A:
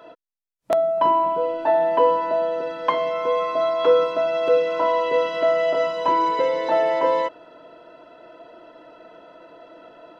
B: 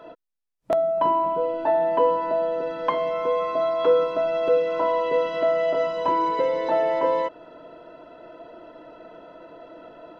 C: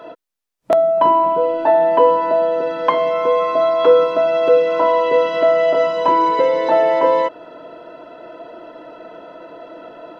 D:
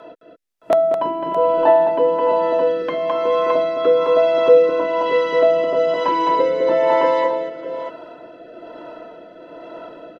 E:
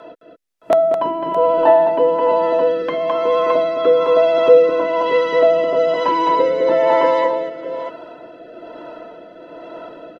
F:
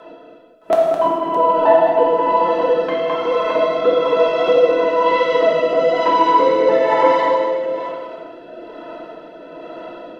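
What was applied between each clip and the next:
tilt EQ -1.5 dB/octave; in parallel at -1.5 dB: compression, threshold -27 dBFS, peak gain reduction 15 dB; on the sum: trim -5 dB
bass shelf 120 Hz -10 dB; trim +8 dB
multi-tap echo 212/616 ms -4.5/-11 dB; rotary cabinet horn 1.1 Hz
vibrato 14 Hz 18 cents; trim +1.5 dB
flange 1.5 Hz, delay 1.6 ms, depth 6.9 ms, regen +70%; gated-style reverb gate 460 ms falling, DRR -1.5 dB; trim +2.5 dB

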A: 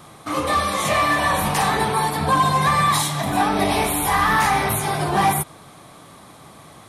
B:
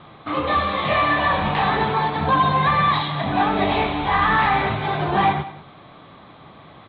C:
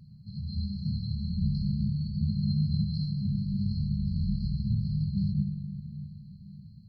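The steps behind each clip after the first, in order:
steep low-pass 3.9 kHz 72 dB/octave; delay 191 ms -17 dB
brick-wall FIR band-stop 220–4100 Hz; on a send at -6 dB: reverberation RT60 3.7 s, pre-delay 78 ms

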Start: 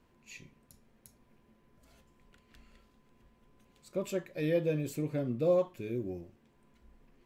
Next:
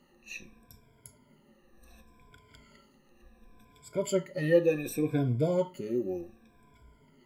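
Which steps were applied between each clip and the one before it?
drifting ripple filter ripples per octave 1.7, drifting -0.68 Hz, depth 24 dB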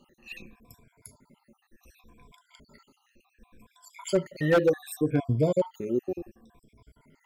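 random holes in the spectrogram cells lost 51%; wavefolder -18 dBFS; trim +4 dB

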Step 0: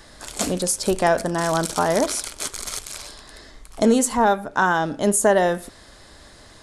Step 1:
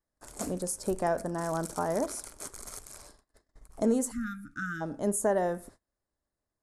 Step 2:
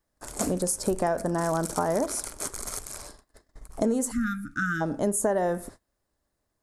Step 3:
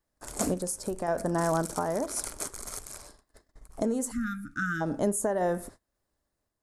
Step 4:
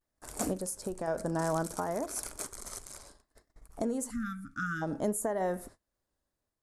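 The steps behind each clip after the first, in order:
peaking EQ 3.3 kHz -14.5 dB 1.5 oct; spectral selection erased 4.11–4.81 s, 340–1200 Hz; gate -42 dBFS, range -30 dB; trim -9 dB
compression 4:1, threshold -31 dBFS, peak gain reduction 8.5 dB; trim +8.5 dB
random-step tremolo 3.7 Hz
vibrato 0.61 Hz 69 cents; trim -4 dB

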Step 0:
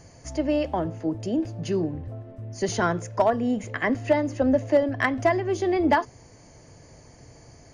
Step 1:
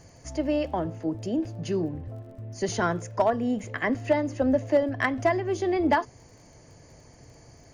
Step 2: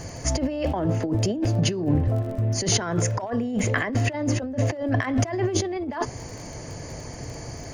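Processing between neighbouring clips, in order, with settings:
crackle 26 per s -46 dBFS; trim -2 dB
compressor with a negative ratio -34 dBFS, ratio -1; trim +9 dB

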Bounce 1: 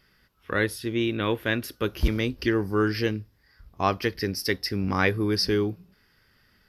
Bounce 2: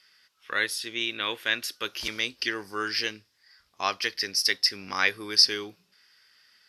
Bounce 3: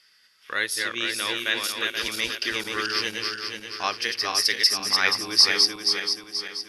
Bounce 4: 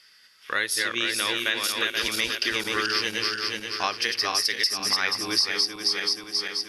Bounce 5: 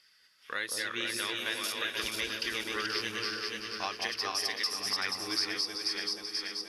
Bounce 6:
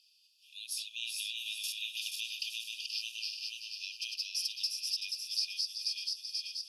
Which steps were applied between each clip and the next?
frequency weighting ITU-R 468; trim -3.5 dB
backward echo that repeats 240 ms, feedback 67%, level -3 dB; steep low-pass 12 kHz 48 dB/octave; treble shelf 8 kHz +7.5 dB
compression 5:1, threshold -25 dBFS, peak gain reduction 12.5 dB; trim +4 dB
phaser 1 Hz, delay 4.6 ms, feedback 27%; on a send: echo whose repeats swap between lows and highs 191 ms, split 920 Hz, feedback 53%, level -3 dB; on the sum: trim -9 dB
brick-wall FIR high-pass 2.4 kHz; trim -2 dB

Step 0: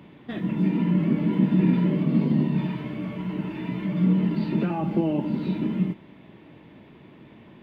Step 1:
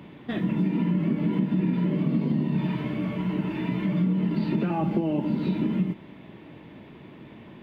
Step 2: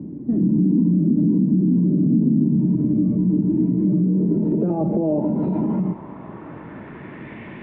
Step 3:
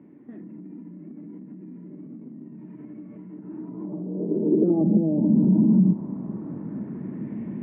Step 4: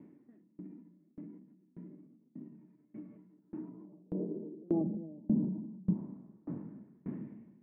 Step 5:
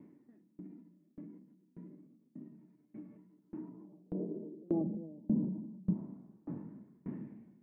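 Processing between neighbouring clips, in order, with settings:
compression, threshold -24 dBFS, peak gain reduction 9 dB; trim +3 dB
peak limiter -24 dBFS, peak gain reduction 10.5 dB; low-pass sweep 280 Hz -> 2.1 kHz, 3.61–7.42 s; trim +8.5 dB
compression, threshold -20 dBFS, peak gain reduction 7 dB; band-pass sweep 2 kHz -> 210 Hz, 3.29–4.98 s; trim +8.5 dB
peak limiter -16.5 dBFS, peak gain reduction 6.5 dB; sawtooth tremolo in dB decaying 1.7 Hz, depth 30 dB; trim -3 dB
flange 0.29 Hz, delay 0.9 ms, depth 1.2 ms, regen +84%; trim +3.5 dB

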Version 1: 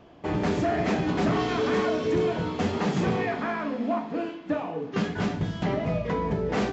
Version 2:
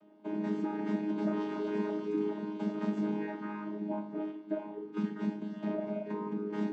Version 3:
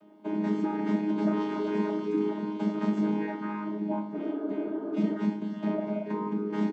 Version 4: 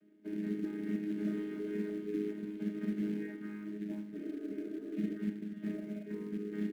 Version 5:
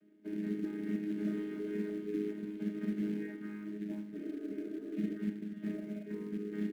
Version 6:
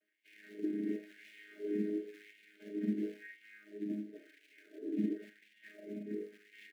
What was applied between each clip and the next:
vocoder on a held chord bare fifth, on G#3; trim -7 dB
spectral replace 4.20–5.14 s, 240–1800 Hz before; doubling 28 ms -12 dB; trim +5 dB
short-mantissa float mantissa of 2-bit; FFT filter 410 Hz 0 dB, 960 Hz -24 dB, 1.7 kHz +1 dB, 5.4 kHz -14 dB; trim -8 dB
no audible change
Chebyshev band-stop 570–1800 Hz, order 2; LFO high-pass sine 0.95 Hz 240–2500 Hz; trim -2.5 dB

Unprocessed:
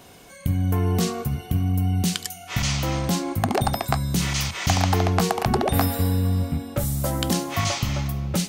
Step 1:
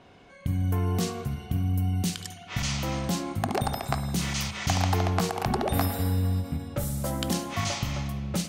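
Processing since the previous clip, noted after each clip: spring tank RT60 1.6 s, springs 53 ms, chirp 50 ms, DRR 10 dB; level-controlled noise filter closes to 2.9 kHz, open at -20 dBFS; endings held to a fixed fall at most 200 dB/s; trim -5 dB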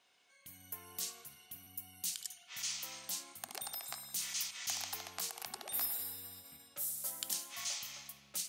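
differentiator; buffer glitch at 1.63 s, samples 512, times 2; trim -2.5 dB

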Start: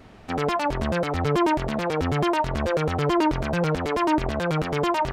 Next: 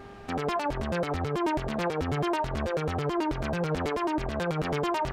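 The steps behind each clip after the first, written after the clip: peak limiter -21 dBFS, peak gain reduction 10 dB; mains buzz 400 Hz, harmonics 4, -49 dBFS -4 dB/octave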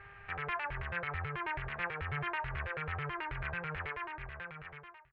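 fade out at the end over 1.59 s; FFT filter 140 Hz 0 dB, 250 Hz -28 dB, 380 Hz -9 dB, 640 Hz -9 dB, 1.8 kHz +10 dB, 2.5 kHz +7 dB, 5.9 kHz -27 dB; trim -7 dB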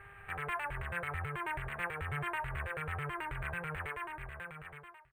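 pre-echo 113 ms -22 dB; decimation joined by straight lines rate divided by 4×

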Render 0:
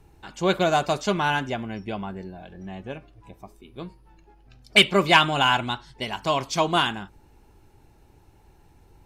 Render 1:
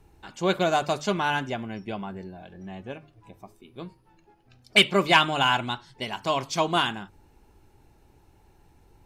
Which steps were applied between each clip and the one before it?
hum notches 50/100/150 Hz; trim -2 dB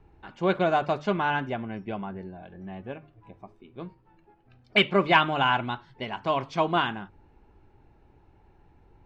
low-pass 2.4 kHz 12 dB/octave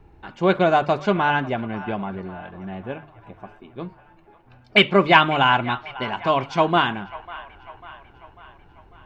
feedback echo behind a band-pass 546 ms, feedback 54%, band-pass 1.4 kHz, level -16 dB; trim +6 dB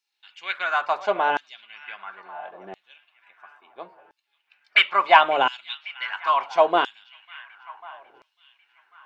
LFO high-pass saw down 0.73 Hz 400–5300 Hz; trim -4 dB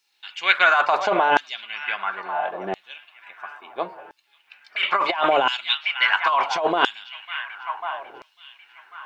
compressor with a negative ratio -25 dBFS, ratio -1; trim +6.5 dB

